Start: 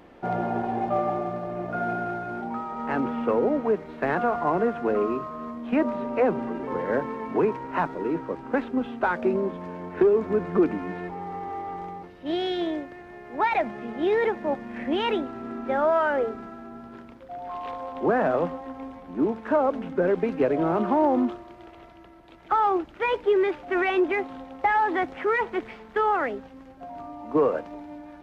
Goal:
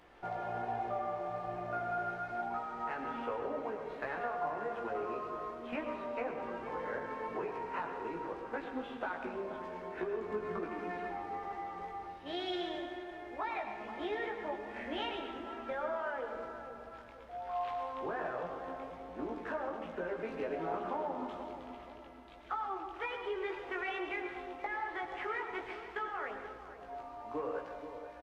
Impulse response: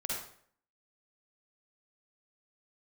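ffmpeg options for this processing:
-filter_complex "[0:a]equalizer=frequency=230:width=0.6:gain=-13,acompressor=threshold=-32dB:ratio=6,flanger=delay=16.5:depth=2.6:speed=1.2,asplit=2[link_01][link_02];[link_02]adelay=481,lowpass=frequency=980:poles=1,volume=-9dB,asplit=2[link_03][link_04];[link_04]adelay=481,lowpass=frequency=980:poles=1,volume=0.48,asplit=2[link_05][link_06];[link_06]adelay=481,lowpass=frequency=980:poles=1,volume=0.48,asplit=2[link_07][link_08];[link_08]adelay=481,lowpass=frequency=980:poles=1,volume=0.48,asplit=2[link_09][link_10];[link_10]adelay=481,lowpass=frequency=980:poles=1,volume=0.48[link_11];[link_01][link_03][link_05][link_07][link_09][link_11]amix=inputs=6:normalize=0,asplit=2[link_12][link_13];[1:a]atrim=start_sample=2205,asetrate=22491,aresample=44100[link_14];[link_13][link_14]afir=irnorm=-1:irlink=0,volume=-10dB[link_15];[link_12][link_15]amix=inputs=2:normalize=0,volume=-3.5dB"

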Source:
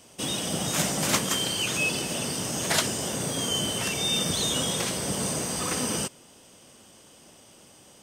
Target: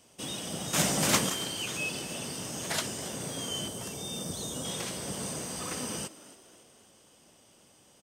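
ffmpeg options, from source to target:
ffmpeg -i in.wav -filter_complex "[0:a]asettb=1/sr,asplit=3[link_01][link_02][link_03];[link_01]atrim=end=0.734[link_04];[link_02]atrim=start=0.73:end=1.3,asetpts=PTS-STARTPTS,afade=type=in:duration=0.004:curve=qsin,afade=type=out:start_time=0.566:duration=0.004:curve=qsin,acontrast=85[link_05];[link_03]atrim=start=1.296[link_06];[link_04][link_05]acrossfade=duration=0.004:curve1=hsin:curve2=qsin[link_07];[link_07][link_06]acrossfade=duration=0.004:curve1=qsin:curve2=hsin,asettb=1/sr,asplit=3[link_08][link_09][link_10];[link_08]atrim=end=3.684[link_11];[link_09]atrim=start=3.68:end=4.65,asetpts=PTS-STARTPTS,afade=type=in:duration=0.004:curve=qsin,afade=type=out:start_time=0.966:duration=0.004:curve=qsin,equalizer=frequency=2400:width=0.74:gain=-10.5[link_12];[link_10]atrim=start=4.646[link_13];[link_11][link_12]acrossfade=duration=0.004:curve1=hsin:curve2=qsin[link_14];[link_14][link_13]acrossfade=duration=0.004:curve1=qsin:curve2=hsin,asplit=2[link_15][link_16];[link_16]asplit=4[link_17][link_18][link_19][link_20];[link_17]adelay=274,afreqshift=73,volume=-17.5dB[link_21];[link_18]adelay=548,afreqshift=146,volume=-23.5dB[link_22];[link_19]adelay=822,afreqshift=219,volume=-29.5dB[link_23];[link_20]adelay=1096,afreqshift=292,volume=-35.6dB[link_24];[link_21][link_22][link_23][link_24]amix=inputs=4:normalize=0[link_25];[link_15][link_25]amix=inputs=2:normalize=0,volume=-7.5dB" out.wav

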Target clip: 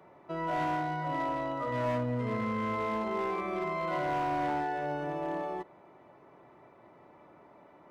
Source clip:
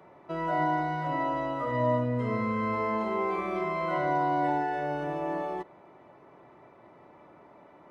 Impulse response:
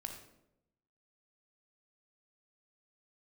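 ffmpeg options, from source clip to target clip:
-af "asoftclip=type=hard:threshold=-24.5dB,volume=-2.5dB"

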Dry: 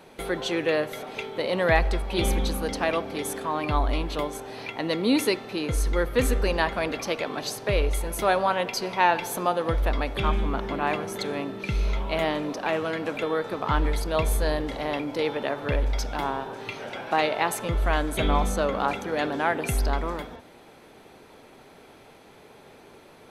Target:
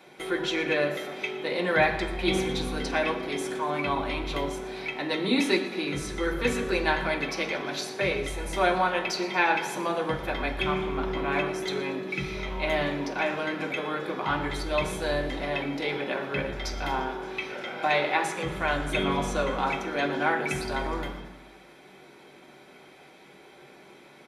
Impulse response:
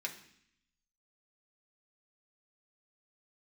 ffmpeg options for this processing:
-filter_complex "[0:a]acrossover=split=9300[link_01][link_02];[link_02]acompressor=threshold=-47dB:ratio=4:attack=1:release=60[link_03];[link_01][link_03]amix=inputs=2:normalize=0,asplit=7[link_04][link_05][link_06][link_07][link_08][link_09][link_10];[link_05]adelay=112,afreqshift=36,volume=-17dB[link_11];[link_06]adelay=224,afreqshift=72,volume=-21.6dB[link_12];[link_07]adelay=336,afreqshift=108,volume=-26.2dB[link_13];[link_08]adelay=448,afreqshift=144,volume=-30.7dB[link_14];[link_09]adelay=560,afreqshift=180,volume=-35.3dB[link_15];[link_10]adelay=672,afreqshift=216,volume=-39.9dB[link_16];[link_04][link_11][link_12][link_13][link_14][link_15][link_16]amix=inputs=7:normalize=0[link_17];[1:a]atrim=start_sample=2205[link_18];[link_17][link_18]afir=irnorm=-1:irlink=0,asetrate=42336,aresample=44100"

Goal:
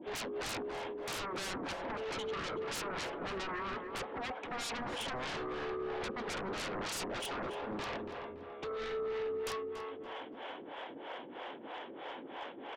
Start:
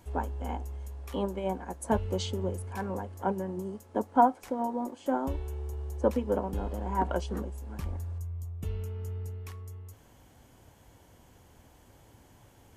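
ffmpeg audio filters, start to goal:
ffmpeg -i in.wav -filter_complex "[0:a]highpass=frequency=310:width=0.5412,highpass=frequency=310:width=1.3066,acompressor=threshold=-37dB:ratio=3,aresample=8000,asoftclip=type=tanh:threshold=-39dB,aresample=44100,acrossover=split=420[link_01][link_02];[link_01]aeval=exprs='val(0)*(1-1/2+1/2*cos(2*PI*3.1*n/s))':channel_layout=same[link_03];[link_02]aeval=exprs='val(0)*(1-1/2-1/2*cos(2*PI*3.1*n/s))':channel_layout=same[link_04];[link_03][link_04]amix=inputs=2:normalize=0,aeval=exprs='0.0168*sin(PI/2*8.91*val(0)/0.0168)':channel_layout=same,asplit=2[link_05][link_06];[link_06]adelay=284,lowpass=frequency=2300:poles=1,volume=-7dB,asplit=2[link_07][link_08];[link_08]adelay=284,lowpass=frequency=2300:poles=1,volume=0.38,asplit=2[link_09][link_10];[link_10]adelay=284,lowpass=frequency=2300:poles=1,volume=0.38,asplit=2[link_11][link_12];[link_12]adelay=284,lowpass=frequency=2300:poles=1,volume=0.38[link_13];[link_07][link_09][link_11][link_13]amix=inputs=4:normalize=0[link_14];[link_05][link_14]amix=inputs=2:normalize=0,volume=-1dB" out.wav

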